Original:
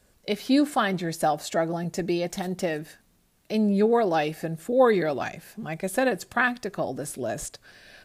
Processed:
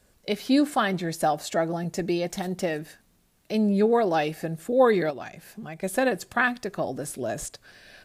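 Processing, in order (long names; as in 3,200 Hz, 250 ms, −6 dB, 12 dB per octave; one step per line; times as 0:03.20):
0:05.10–0:05.82: downward compressor 3 to 1, threshold −36 dBFS, peak gain reduction 8.5 dB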